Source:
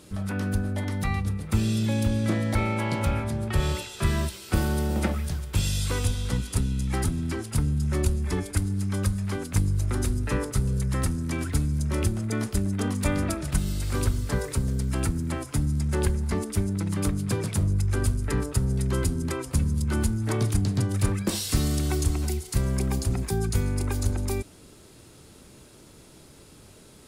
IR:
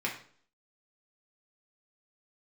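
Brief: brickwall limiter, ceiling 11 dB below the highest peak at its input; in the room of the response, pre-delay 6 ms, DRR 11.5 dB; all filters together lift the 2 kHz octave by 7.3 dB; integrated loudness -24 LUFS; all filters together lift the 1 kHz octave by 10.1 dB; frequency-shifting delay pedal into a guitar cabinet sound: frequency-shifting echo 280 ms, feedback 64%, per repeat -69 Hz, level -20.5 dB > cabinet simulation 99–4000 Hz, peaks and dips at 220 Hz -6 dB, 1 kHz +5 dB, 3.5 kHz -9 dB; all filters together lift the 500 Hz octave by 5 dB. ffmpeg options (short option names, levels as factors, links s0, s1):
-filter_complex "[0:a]equalizer=f=500:t=o:g=5,equalizer=f=1000:t=o:g=6.5,equalizer=f=2000:t=o:g=7,alimiter=limit=0.126:level=0:latency=1,asplit=2[s0][s1];[1:a]atrim=start_sample=2205,adelay=6[s2];[s1][s2]afir=irnorm=-1:irlink=0,volume=0.126[s3];[s0][s3]amix=inputs=2:normalize=0,asplit=7[s4][s5][s6][s7][s8][s9][s10];[s5]adelay=280,afreqshift=-69,volume=0.0944[s11];[s6]adelay=560,afreqshift=-138,volume=0.0603[s12];[s7]adelay=840,afreqshift=-207,volume=0.0385[s13];[s8]adelay=1120,afreqshift=-276,volume=0.0248[s14];[s9]adelay=1400,afreqshift=-345,volume=0.0158[s15];[s10]adelay=1680,afreqshift=-414,volume=0.0101[s16];[s4][s11][s12][s13][s14][s15][s16]amix=inputs=7:normalize=0,highpass=99,equalizer=f=220:t=q:w=4:g=-6,equalizer=f=1000:t=q:w=4:g=5,equalizer=f=3500:t=q:w=4:g=-9,lowpass=f=4000:w=0.5412,lowpass=f=4000:w=1.3066,volume=1.88"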